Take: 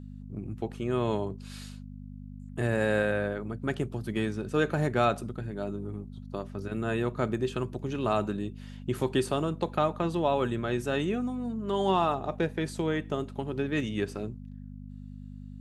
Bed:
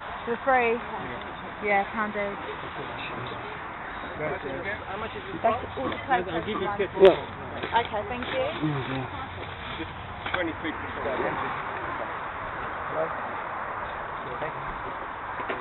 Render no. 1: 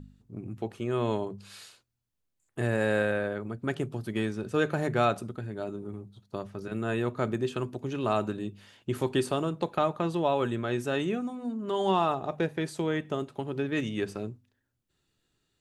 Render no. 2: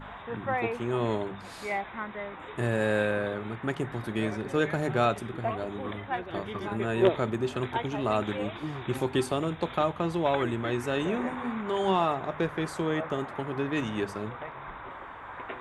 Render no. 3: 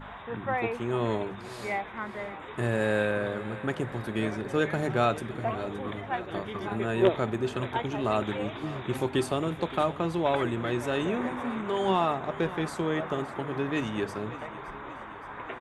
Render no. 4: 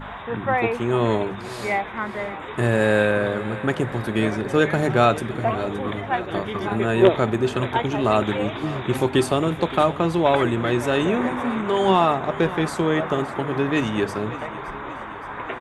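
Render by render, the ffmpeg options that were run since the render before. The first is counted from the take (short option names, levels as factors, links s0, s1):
-af "bandreject=f=50:t=h:w=4,bandreject=f=100:t=h:w=4,bandreject=f=150:t=h:w=4,bandreject=f=200:t=h:w=4,bandreject=f=250:t=h:w=4"
-filter_complex "[1:a]volume=0.398[s0];[0:a][s0]amix=inputs=2:normalize=0"
-af "aecho=1:1:569|1138|1707|2276|2845|3414:0.158|0.0935|0.0552|0.0326|0.0192|0.0113"
-af "volume=2.51,alimiter=limit=0.708:level=0:latency=1"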